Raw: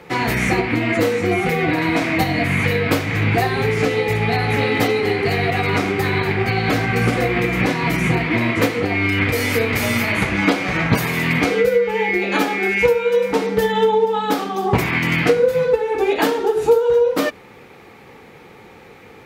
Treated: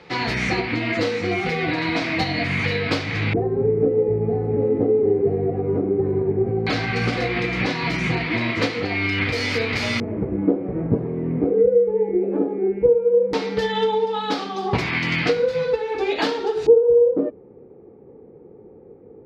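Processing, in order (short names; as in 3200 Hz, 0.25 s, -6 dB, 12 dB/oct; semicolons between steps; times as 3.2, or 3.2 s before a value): LFO low-pass square 0.15 Hz 420–4600 Hz; gain -5 dB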